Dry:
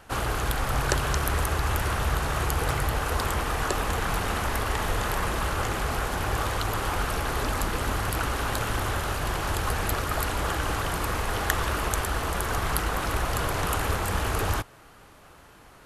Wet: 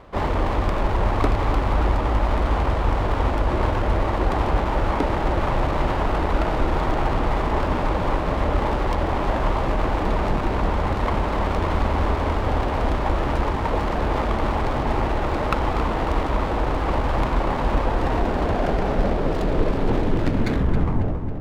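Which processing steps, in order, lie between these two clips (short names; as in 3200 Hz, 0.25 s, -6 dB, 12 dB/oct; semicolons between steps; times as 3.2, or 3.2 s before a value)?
tape stop at the end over 2.76 s; in parallel at +1 dB: vocal rider; on the sum: air absorption 240 m; on a send: darkening echo 0.202 s, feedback 64%, low-pass 2800 Hz, level -8.5 dB; on the sum: speed mistake 45 rpm record played at 33 rpm; running maximum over 9 samples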